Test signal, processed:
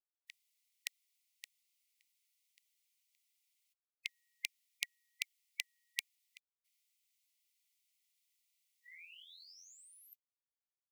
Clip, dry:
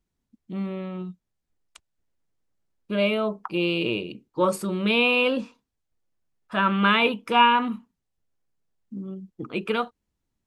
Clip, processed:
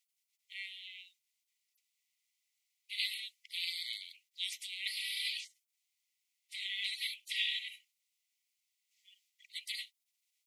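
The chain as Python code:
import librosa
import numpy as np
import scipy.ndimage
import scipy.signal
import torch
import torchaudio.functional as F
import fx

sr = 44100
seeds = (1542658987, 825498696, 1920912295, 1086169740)

y = fx.spec_gate(x, sr, threshold_db=-30, keep='weak')
y = fx.brickwall_highpass(y, sr, low_hz=1900.0)
y = y * librosa.db_to_amplitude(9.0)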